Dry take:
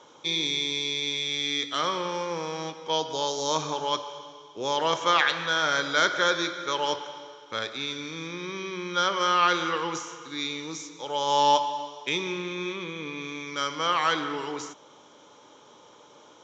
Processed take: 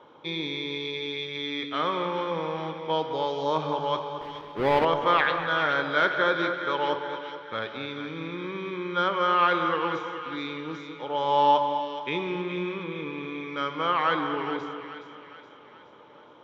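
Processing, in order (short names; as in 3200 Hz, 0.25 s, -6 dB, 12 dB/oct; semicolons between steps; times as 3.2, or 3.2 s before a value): 4.21–4.85 half-waves squared off; air absorption 420 m; split-band echo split 1400 Hz, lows 0.219 s, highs 0.42 s, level -9 dB; gain +2.5 dB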